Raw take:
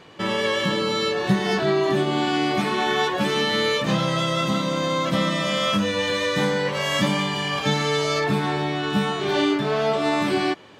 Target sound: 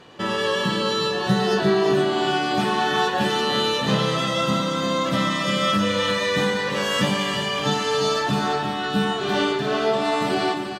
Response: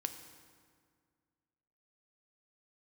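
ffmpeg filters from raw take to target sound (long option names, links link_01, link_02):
-filter_complex "[0:a]bandreject=frequency=2200:width=11,aecho=1:1:350:0.422[link_01];[1:a]atrim=start_sample=2205,afade=type=out:start_time=0.18:duration=0.01,atrim=end_sample=8379,asetrate=34839,aresample=44100[link_02];[link_01][link_02]afir=irnorm=-1:irlink=0"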